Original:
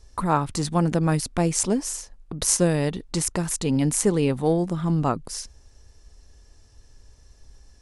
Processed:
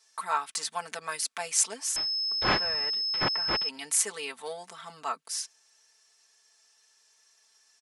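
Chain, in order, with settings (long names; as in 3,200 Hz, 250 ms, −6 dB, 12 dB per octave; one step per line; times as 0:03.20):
high-pass filter 1,300 Hz 12 dB per octave
comb filter 4.5 ms, depth 92%
0:01.96–0:03.69: switching amplifier with a slow clock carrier 5,200 Hz
level −2.5 dB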